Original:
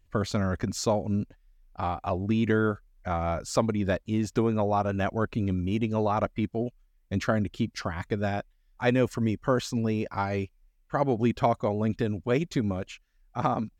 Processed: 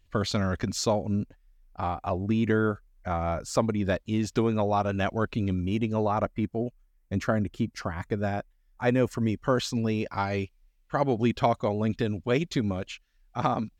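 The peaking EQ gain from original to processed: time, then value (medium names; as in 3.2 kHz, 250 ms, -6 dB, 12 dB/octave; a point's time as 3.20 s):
peaking EQ 3.6 kHz 1.3 oct
0.66 s +7 dB
1.19 s -2 dB
3.60 s -2 dB
4.24 s +5.5 dB
5.37 s +5.5 dB
6.27 s -5.5 dB
8.91 s -5.5 dB
9.55 s +5 dB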